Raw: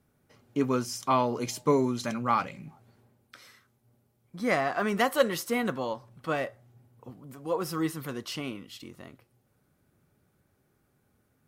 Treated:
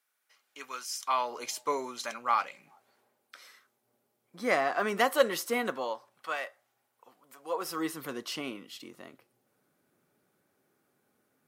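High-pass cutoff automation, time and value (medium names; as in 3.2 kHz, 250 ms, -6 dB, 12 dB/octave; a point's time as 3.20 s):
0.87 s 1.5 kHz
1.37 s 700 Hz
2.52 s 700 Hz
4.57 s 300 Hz
5.59 s 300 Hz
6.34 s 910 Hz
7.23 s 910 Hz
8.05 s 260 Hz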